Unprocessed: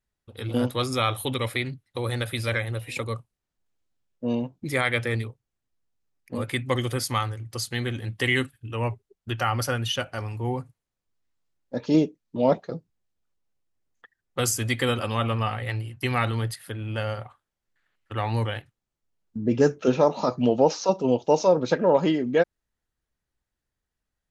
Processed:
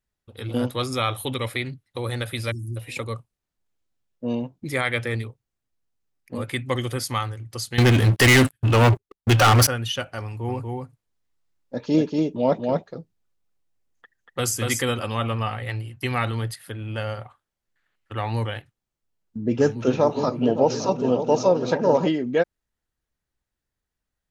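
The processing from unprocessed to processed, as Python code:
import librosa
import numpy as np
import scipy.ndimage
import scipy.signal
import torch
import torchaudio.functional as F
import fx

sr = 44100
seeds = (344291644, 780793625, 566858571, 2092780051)

y = fx.spec_erase(x, sr, start_s=2.51, length_s=0.26, low_hz=370.0, high_hz=4600.0)
y = fx.leveller(y, sr, passes=5, at=(7.78, 9.67))
y = fx.echo_single(y, sr, ms=238, db=-3.0, at=(10.47, 14.81), fade=0.02)
y = fx.echo_opening(y, sr, ms=283, hz=200, octaves=2, feedback_pct=70, wet_db=-6, at=(19.56, 22.07), fade=0.02)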